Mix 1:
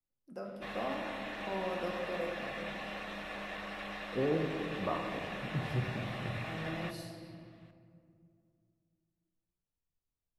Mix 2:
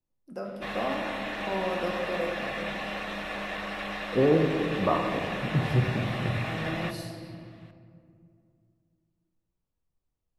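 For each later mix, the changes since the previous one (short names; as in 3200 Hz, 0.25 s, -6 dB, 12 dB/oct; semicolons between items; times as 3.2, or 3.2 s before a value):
first voice +6.5 dB; second voice +10.0 dB; background +7.5 dB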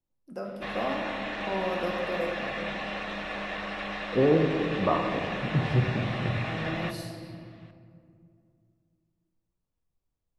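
background: add LPF 6300 Hz 12 dB/oct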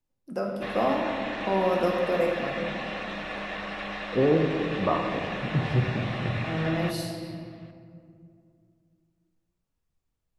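first voice +6.5 dB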